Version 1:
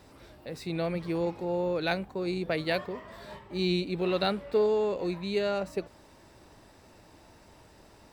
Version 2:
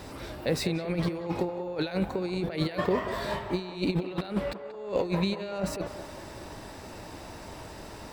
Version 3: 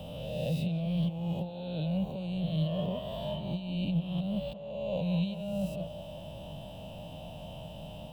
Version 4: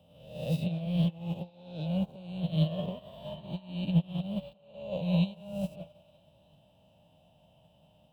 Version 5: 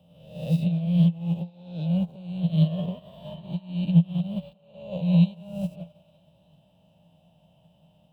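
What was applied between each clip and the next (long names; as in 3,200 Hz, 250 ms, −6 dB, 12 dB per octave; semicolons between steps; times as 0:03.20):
compressor whose output falls as the input rises −35 dBFS, ratio −0.5; feedback echo with a band-pass in the loop 185 ms, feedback 56%, band-pass 850 Hz, level −8 dB; level +6 dB
peak hold with a rise ahead of every peak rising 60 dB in 1.24 s; drawn EQ curve 110 Hz 0 dB, 160 Hz +8 dB, 380 Hz −19 dB, 610 Hz +3 dB, 1,300 Hz −21 dB, 2,100 Hz −24 dB, 3,000 Hz +9 dB, 4,400 Hz −16 dB, 7,100 Hz −15 dB, 12,000 Hz −5 dB; multiband upward and downward compressor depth 40%; level −6.5 dB
high-pass filter 61 Hz; echo through a band-pass that steps 307 ms, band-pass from 1,100 Hz, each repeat 0.7 octaves, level −4 dB; expander for the loud parts 2.5 to 1, over −43 dBFS; level +6.5 dB
parametric band 170 Hz +9 dB 0.34 octaves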